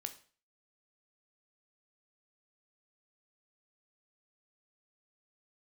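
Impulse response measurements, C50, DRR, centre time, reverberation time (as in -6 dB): 13.5 dB, 7.5 dB, 8 ms, 0.40 s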